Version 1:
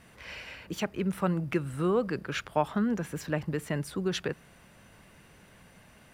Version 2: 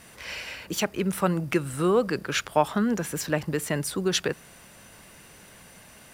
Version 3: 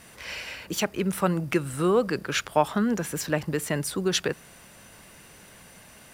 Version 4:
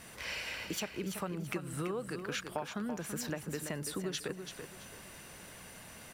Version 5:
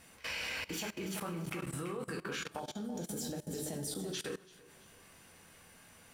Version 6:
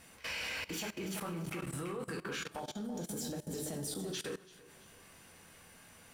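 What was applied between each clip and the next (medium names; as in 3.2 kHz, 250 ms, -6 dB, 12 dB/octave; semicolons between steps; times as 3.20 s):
tone controls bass -4 dB, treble +8 dB; trim +5.5 dB
no audible change
compression 6:1, threshold -34 dBFS, peak gain reduction 18 dB; feedback delay 334 ms, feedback 26%, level -8 dB; trim -1.5 dB
two-slope reverb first 0.37 s, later 1.9 s, from -16 dB, DRR 0 dB; level held to a coarse grid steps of 20 dB; time-frequency box 2.59–4.14 s, 890–3000 Hz -12 dB; trim +1 dB
saturation -32 dBFS, distortion -20 dB; trim +1 dB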